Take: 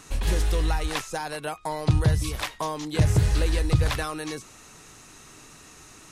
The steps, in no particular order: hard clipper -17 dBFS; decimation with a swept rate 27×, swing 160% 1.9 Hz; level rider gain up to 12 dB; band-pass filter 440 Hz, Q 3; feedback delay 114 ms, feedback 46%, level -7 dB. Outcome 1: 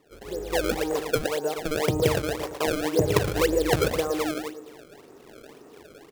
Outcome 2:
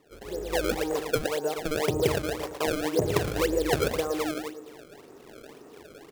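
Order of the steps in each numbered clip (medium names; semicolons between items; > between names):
band-pass filter > hard clipper > level rider > feedback delay > decimation with a swept rate; hard clipper > feedback delay > level rider > band-pass filter > decimation with a swept rate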